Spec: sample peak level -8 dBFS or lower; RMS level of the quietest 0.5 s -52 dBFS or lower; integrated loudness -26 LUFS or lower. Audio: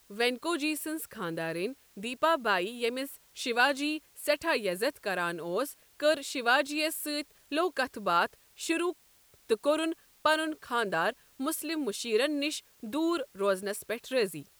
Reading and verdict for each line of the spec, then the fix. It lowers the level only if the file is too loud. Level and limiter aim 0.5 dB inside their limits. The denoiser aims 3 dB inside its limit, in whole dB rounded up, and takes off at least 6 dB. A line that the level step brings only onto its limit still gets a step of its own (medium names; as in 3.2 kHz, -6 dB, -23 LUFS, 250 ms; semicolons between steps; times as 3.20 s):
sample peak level -11.0 dBFS: pass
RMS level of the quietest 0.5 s -62 dBFS: pass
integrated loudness -31.0 LUFS: pass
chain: none needed